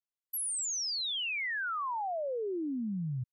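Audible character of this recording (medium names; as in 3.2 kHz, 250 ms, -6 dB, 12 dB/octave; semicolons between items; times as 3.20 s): noise floor -96 dBFS; spectral tilt -3.5 dB/octave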